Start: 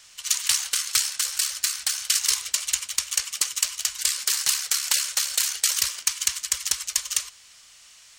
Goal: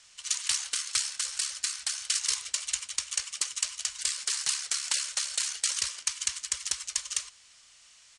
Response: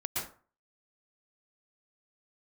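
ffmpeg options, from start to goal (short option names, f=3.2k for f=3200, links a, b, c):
-af "aresample=22050,aresample=44100,volume=-6dB"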